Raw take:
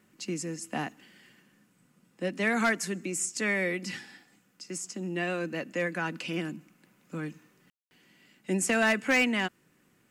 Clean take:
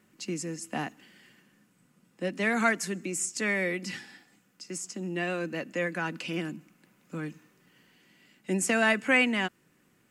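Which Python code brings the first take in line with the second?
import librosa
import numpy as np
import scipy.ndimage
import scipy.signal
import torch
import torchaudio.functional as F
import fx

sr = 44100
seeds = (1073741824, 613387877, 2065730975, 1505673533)

y = fx.fix_declip(x, sr, threshold_db=-18.5)
y = fx.fix_ambience(y, sr, seeds[0], print_start_s=9.51, print_end_s=10.01, start_s=7.7, end_s=7.91)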